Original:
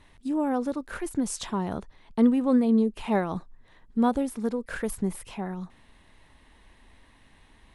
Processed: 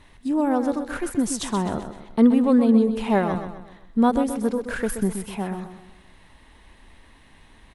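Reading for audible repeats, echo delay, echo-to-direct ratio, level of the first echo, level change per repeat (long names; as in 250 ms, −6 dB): 4, 128 ms, −8.0 dB, −9.0 dB, −7.5 dB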